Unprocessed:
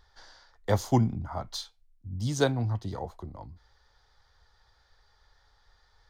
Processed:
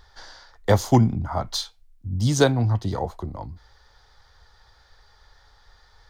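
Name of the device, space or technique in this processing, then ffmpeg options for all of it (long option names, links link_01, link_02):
clipper into limiter: -af "asoftclip=type=hard:threshold=-12dB,alimiter=limit=-14.5dB:level=0:latency=1:release=481,volume=9dB"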